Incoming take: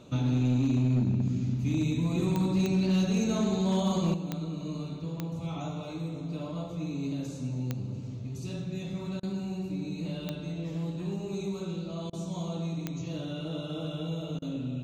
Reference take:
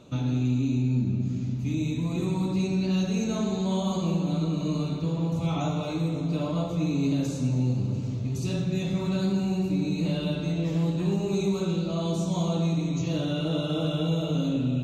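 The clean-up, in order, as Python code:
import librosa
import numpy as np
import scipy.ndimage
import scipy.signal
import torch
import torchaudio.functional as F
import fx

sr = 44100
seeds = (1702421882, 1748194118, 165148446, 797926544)

y = fx.fix_declip(x, sr, threshold_db=-20.5)
y = fx.fix_declick_ar(y, sr, threshold=10.0)
y = fx.fix_interpolate(y, sr, at_s=(9.2, 12.1, 14.39), length_ms=29.0)
y = fx.gain(y, sr, db=fx.steps((0.0, 0.0), (4.14, 8.0)))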